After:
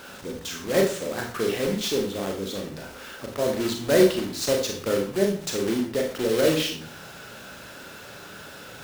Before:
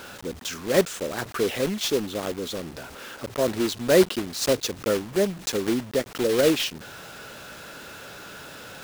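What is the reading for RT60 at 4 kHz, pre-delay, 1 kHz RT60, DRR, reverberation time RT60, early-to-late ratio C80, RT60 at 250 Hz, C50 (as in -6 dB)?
0.40 s, 29 ms, 0.40 s, 1.5 dB, 0.45 s, 11.0 dB, 0.50 s, 6.5 dB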